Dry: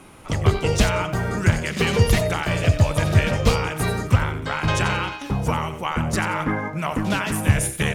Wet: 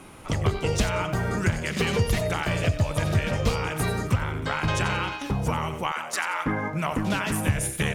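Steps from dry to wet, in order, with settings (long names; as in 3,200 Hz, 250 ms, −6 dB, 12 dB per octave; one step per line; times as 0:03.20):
0:05.92–0:06.46: high-pass filter 850 Hz 12 dB per octave
downward compressor 2 to 1, threshold −24 dBFS, peak gain reduction 8 dB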